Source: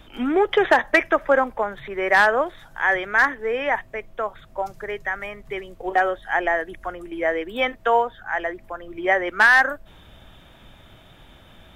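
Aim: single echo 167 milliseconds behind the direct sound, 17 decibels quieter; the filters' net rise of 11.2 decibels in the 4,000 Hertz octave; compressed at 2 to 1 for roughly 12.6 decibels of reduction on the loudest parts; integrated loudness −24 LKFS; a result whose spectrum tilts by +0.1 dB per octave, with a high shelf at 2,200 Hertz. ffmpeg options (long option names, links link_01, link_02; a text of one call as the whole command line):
ffmpeg -i in.wav -af "highshelf=frequency=2200:gain=8.5,equalizer=frequency=4000:width_type=o:gain=7,acompressor=threshold=-30dB:ratio=2,aecho=1:1:167:0.141,volume=4dB" out.wav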